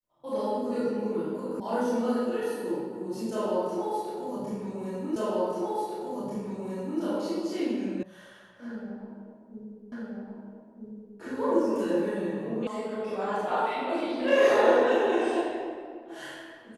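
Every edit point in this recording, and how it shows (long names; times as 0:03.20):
0:01.60: cut off before it has died away
0:05.16: the same again, the last 1.84 s
0:08.03: cut off before it has died away
0:09.92: the same again, the last 1.27 s
0:12.67: cut off before it has died away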